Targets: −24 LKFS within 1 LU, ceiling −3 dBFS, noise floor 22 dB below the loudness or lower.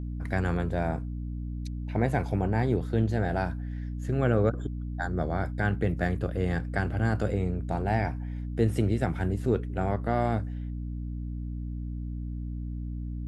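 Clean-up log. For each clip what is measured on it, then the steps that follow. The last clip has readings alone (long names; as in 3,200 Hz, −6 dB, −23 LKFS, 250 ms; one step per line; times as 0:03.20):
mains hum 60 Hz; hum harmonics up to 300 Hz; level of the hum −32 dBFS; integrated loudness −30.0 LKFS; sample peak −11.5 dBFS; target loudness −24.0 LKFS
→ mains-hum notches 60/120/180/240/300 Hz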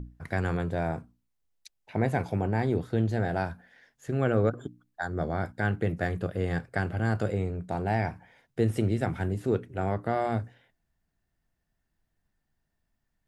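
mains hum none found; integrated loudness −30.0 LKFS; sample peak −12.0 dBFS; target loudness −24.0 LKFS
→ level +6 dB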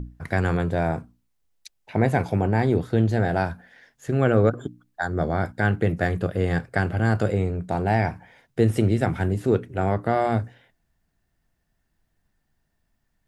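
integrated loudness −24.0 LKFS; sample peak −6.0 dBFS; background noise floor −73 dBFS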